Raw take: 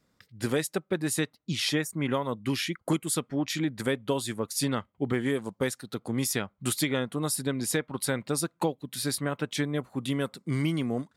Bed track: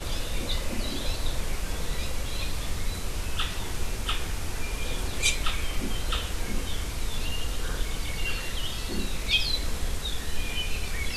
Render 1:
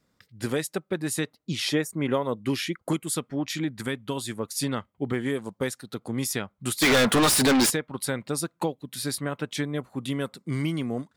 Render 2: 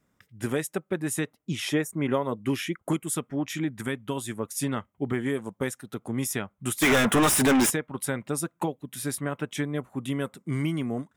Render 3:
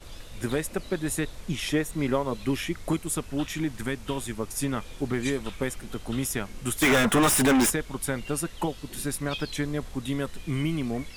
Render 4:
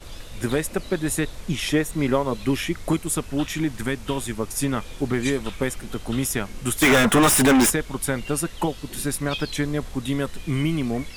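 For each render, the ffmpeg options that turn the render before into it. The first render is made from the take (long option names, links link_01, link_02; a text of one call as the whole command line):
ffmpeg -i in.wav -filter_complex "[0:a]asettb=1/sr,asplit=3[link_01][link_02][link_03];[link_01]atrim=end=1.244[link_04];[link_02]atrim=start=1.24:end=2.84,asetpts=PTS-STARTPTS,afade=type=in:duration=0.004:curve=qsin,afade=type=out:start_time=1.596:duration=0.004:curve=qsin,equalizer=frequency=450:width_type=o:width=1.4:gain=5[link_05];[link_03]atrim=start=2.836[link_06];[link_04][link_05]acrossfade=duration=0.004:curve1=hsin:curve2=qsin[link_07];[link_07][link_06]acrossfade=duration=0.004:curve1=qsin:curve2=hsin,asettb=1/sr,asplit=3[link_08][link_09][link_10];[link_08]atrim=end=3.714[link_11];[link_09]atrim=start=3.71:end=4.17,asetpts=PTS-STARTPTS,afade=type=in:duration=0.004:curve=qsin,afade=type=out:start_time=0.456:duration=0.004:curve=qsin,equalizer=frequency=540:width=1.6:gain=-7.5[link_12];[link_10]atrim=start=4.166[link_13];[link_11][link_12]acrossfade=duration=0.004:curve1=hsin:curve2=qsin[link_14];[link_14][link_13]acrossfade=duration=0.004:curve1=qsin:curve2=hsin,asplit=3[link_15][link_16][link_17];[link_15]afade=type=out:start_time=6.81:duration=0.02[link_18];[link_16]asplit=2[link_19][link_20];[link_20]highpass=frequency=720:poles=1,volume=39dB,asoftclip=type=tanh:threshold=-12.5dB[link_21];[link_19][link_21]amix=inputs=2:normalize=0,lowpass=frequency=6900:poles=1,volume=-6dB,afade=type=in:start_time=6.81:duration=0.02,afade=type=out:start_time=7.69:duration=0.02[link_22];[link_17]afade=type=in:start_time=7.69:duration=0.02[link_23];[link_18][link_22][link_23]amix=inputs=3:normalize=0" out.wav
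ffmpeg -i in.wav -af "equalizer=frequency=4400:width_type=o:width=0.43:gain=-14,bandreject=frequency=500:width=12" out.wav
ffmpeg -i in.wav -i bed.wav -filter_complex "[1:a]volume=-12.5dB[link_01];[0:a][link_01]amix=inputs=2:normalize=0" out.wav
ffmpeg -i in.wav -af "volume=4.5dB" out.wav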